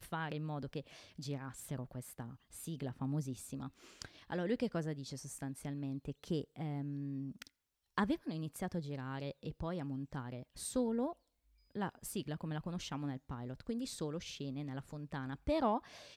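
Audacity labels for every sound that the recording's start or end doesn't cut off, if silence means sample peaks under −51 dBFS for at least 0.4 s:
7.980000	11.130000	sound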